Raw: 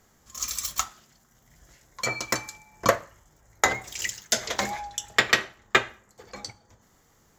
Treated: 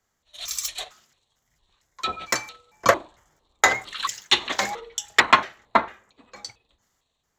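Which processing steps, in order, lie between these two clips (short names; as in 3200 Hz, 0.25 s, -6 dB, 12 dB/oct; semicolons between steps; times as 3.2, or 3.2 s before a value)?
trilling pitch shifter -10 st, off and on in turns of 0.226 s; overdrive pedal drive 9 dB, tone 7000 Hz, clips at -3 dBFS; three-band expander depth 40%; gain -1 dB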